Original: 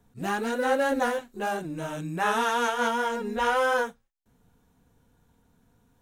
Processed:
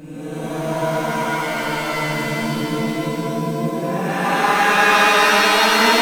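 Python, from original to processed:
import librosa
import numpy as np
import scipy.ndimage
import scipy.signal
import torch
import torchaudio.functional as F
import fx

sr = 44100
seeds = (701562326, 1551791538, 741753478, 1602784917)

y = fx.paulstretch(x, sr, seeds[0], factor=9.2, window_s=0.1, from_s=1.75)
y = fx.rev_shimmer(y, sr, seeds[1], rt60_s=3.1, semitones=7, shimmer_db=-2, drr_db=-9.0)
y = y * 10.0 ** (-1.5 / 20.0)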